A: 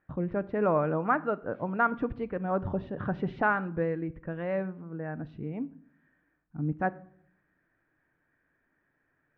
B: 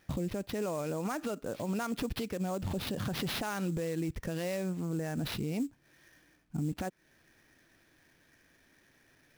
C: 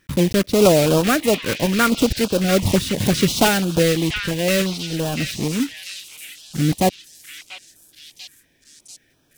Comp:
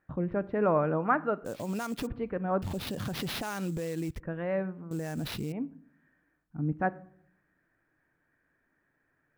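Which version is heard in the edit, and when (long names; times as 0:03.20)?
A
0:01.45–0:02.07: punch in from B
0:02.62–0:04.20: punch in from B
0:04.91–0:05.52: punch in from B
not used: C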